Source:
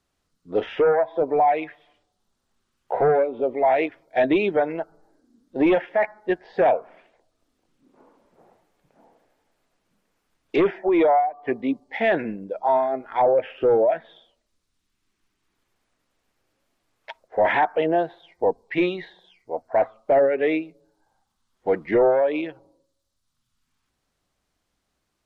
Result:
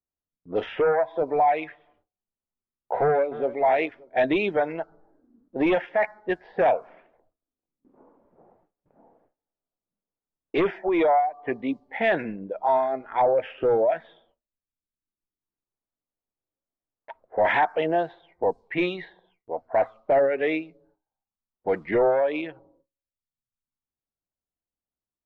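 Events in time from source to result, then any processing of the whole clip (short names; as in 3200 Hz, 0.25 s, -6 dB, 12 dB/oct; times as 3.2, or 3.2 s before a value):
3.02–3.6 echo throw 0.29 s, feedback 25%, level -16 dB
whole clip: low-pass opened by the level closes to 1000 Hz, open at -16.5 dBFS; dynamic EQ 340 Hz, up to -4 dB, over -31 dBFS, Q 0.72; gate with hold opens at -54 dBFS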